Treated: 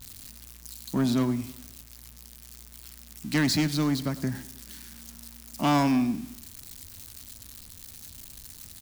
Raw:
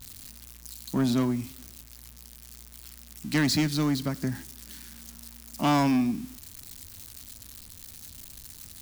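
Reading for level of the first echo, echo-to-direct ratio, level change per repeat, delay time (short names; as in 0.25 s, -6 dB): -19.0 dB, -17.5 dB, -5.0 dB, 0.103 s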